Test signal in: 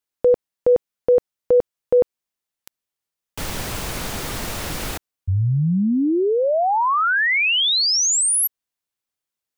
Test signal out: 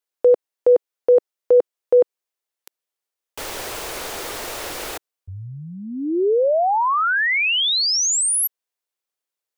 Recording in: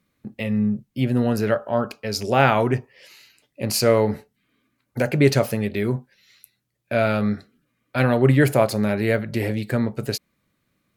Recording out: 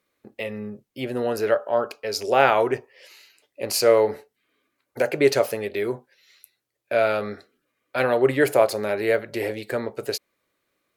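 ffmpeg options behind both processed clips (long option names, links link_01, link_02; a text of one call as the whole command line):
ffmpeg -i in.wav -af "lowshelf=frequency=280:width_type=q:width=1.5:gain=-12,volume=-1dB" out.wav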